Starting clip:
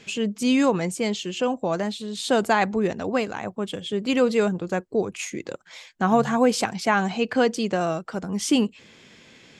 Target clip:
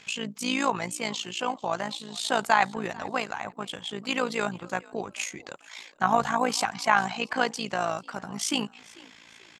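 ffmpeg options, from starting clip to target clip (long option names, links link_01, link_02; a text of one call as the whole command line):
ffmpeg -i in.wav -filter_complex "[0:a]lowshelf=frequency=630:width_type=q:width=1.5:gain=-8.5,asplit=3[link_01][link_02][link_03];[link_02]adelay=442,afreqshift=49,volume=-23dB[link_04];[link_03]adelay=884,afreqshift=98,volume=-32.6dB[link_05];[link_01][link_04][link_05]amix=inputs=3:normalize=0,tremolo=f=56:d=0.75,volume=2.5dB" out.wav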